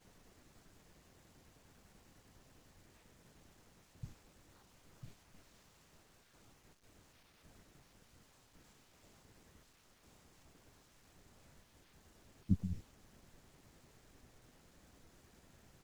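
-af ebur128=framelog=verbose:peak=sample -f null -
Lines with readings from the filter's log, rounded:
Integrated loudness:
  I:         -43.1 LUFS
  Threshold: -63.0 LUFS
Loudness range:
  LRA:        19.1 LU
  Threshold: -72.2 LUFS
  LRA low:   -65.3 LUFS
  LRA high:  -46.2 LUFS
Sample peak:
  Peak:      -18.9 dBFS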